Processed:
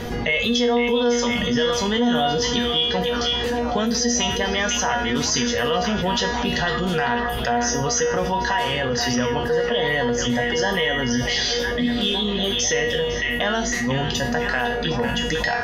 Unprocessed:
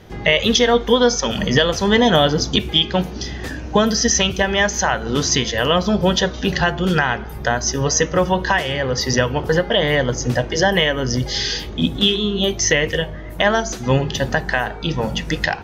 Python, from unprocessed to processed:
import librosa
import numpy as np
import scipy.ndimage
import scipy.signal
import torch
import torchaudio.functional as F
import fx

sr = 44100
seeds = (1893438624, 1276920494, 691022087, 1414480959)

p1 = fx.comb_fb(x, sr, f0_hz=240.0, decay_s=0.41, harmonics='all', damping=0.0, mix_pct=90)
p2 = p1 + fx.echo_stepped(p1, sr, ms=503, hz=2500.0, octaves=-0.7, feedback_pct=70, wet_db=-4.5, dry=0)
y = fx.env_flatten(p2, sr, amount_pct=70)